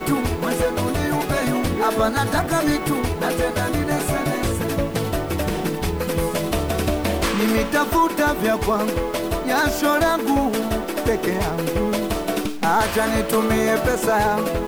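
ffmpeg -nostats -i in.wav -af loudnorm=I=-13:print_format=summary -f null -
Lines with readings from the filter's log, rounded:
Input Integrated:    -21.0 LUFS
Input True Peak:      -8.1 dBTP
Input LRA:             2.5 LU
Input Threshold:     -31.0 LUFS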